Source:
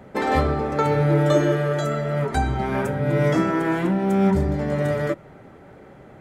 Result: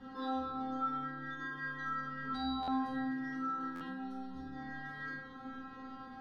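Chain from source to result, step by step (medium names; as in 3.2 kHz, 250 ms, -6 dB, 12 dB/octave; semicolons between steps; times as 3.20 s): low-pass 6.4 kHz; hum notches 50/100/150/200 Hz; compressor with a negative ratio -25 dBFS, ratio -0.5; peak limiter -27.5 dBFS, peak gain reduction 15.5 dB; static phaser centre 2.3 kHz, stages 6; inharmonic resonator 260 Hz, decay 0.84 s, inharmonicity 0.002; flutter echo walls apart 8.3 m, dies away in 0.46 s; buffer glitch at 2.62/3.75 s, samples 512, times 4; trim +17 dB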